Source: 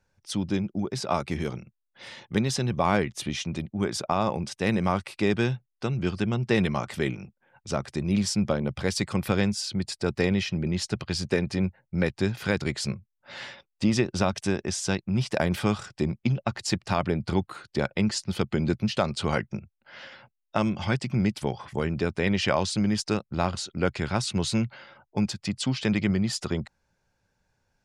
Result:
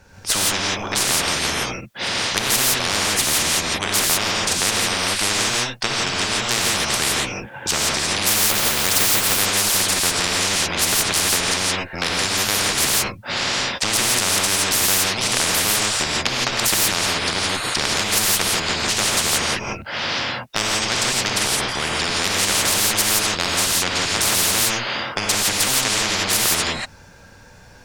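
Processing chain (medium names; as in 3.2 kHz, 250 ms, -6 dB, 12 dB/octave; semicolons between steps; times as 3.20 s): dynamic bell 910 Hz, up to -7 dB, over -40 dBFS, Q 0.79; Chebyshev shaper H 5 -21 dB, 7 -22 dB, 8 -24 dB, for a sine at -10.5 dBFS; 8.41–9.29 s: short-mantissa float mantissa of 2-bit; gated-style reverb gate 190 ms rising, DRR -6 dB; spectrum-flattening compressor 10:1; trim +3.5 dB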